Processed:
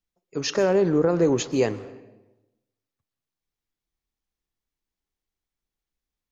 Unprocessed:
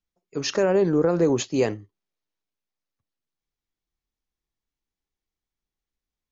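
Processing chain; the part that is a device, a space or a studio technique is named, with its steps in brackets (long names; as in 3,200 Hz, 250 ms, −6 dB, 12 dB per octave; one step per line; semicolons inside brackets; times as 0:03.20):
saturated reverb return (on a send at −12.5 dB: convolution reverb RT60 1.0 s, pre-delay 115 ms + soft clipping −23.5 dBFS, distortion −8 dB)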